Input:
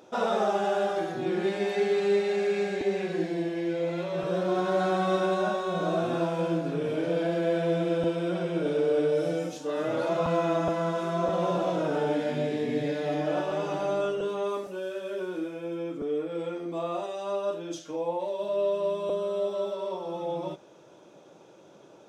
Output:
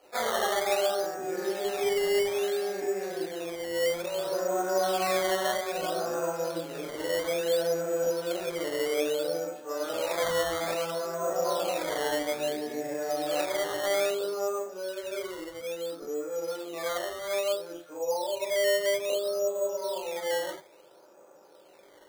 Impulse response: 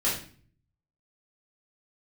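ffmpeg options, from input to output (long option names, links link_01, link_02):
-filter_complex "[0:a]acrossover=split=420 2300:gain=0.126 1 0.0708[link_01][link_02][link_03];[link_01][link_02][link_03]amix=inputs=3:normalize=0[link_04];[1:a]atrim=start_sample=2205,atrim=end_sample=3087[link_05];[link_04][link_05]afir=irnorm=-1:irlink=0,acrusher=samples=12:mix=1:aa=0.000001:lfo=1:lforange=12:lforate=0.6,volume=-8.5dB"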